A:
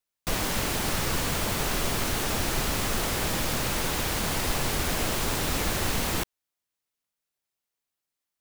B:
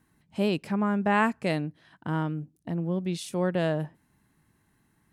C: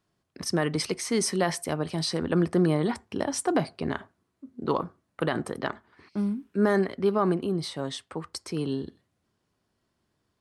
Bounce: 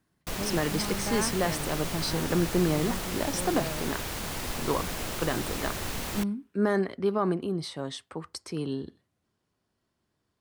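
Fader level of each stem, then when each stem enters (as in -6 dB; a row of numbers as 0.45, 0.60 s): -6.5, -10.0, -2.5 dB; 0.00, 0.00, 0.00 s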